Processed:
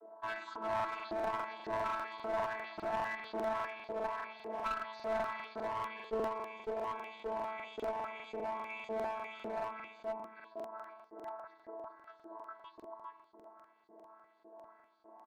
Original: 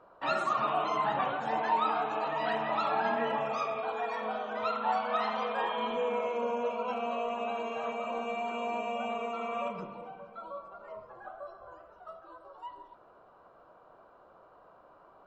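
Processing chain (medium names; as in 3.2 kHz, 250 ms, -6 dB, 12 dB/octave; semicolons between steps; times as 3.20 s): vocoder on a held chord bare fifth, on A3; in parallel at +2 dB: compression, threshold -41 dBFS, peak gain reduction 16.5 dB; on the sum: treble shelf 4.2 kHz +9.5 dB; band-stop 3 kHz, Q 12; on a send: delay 410 ms -3.5 dB; on the sum: LFO band-pass saw up 1.8 Hz 390–5000 Hz; peaking EQ 1.9 kHz -2.5 dB 1.6 oct; one-sided clip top -35.5 dBFS; crackling interface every 0.20 s, samples 2048, repeat, from 0.75 s; attacks held to a fixed rise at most 540 dB/s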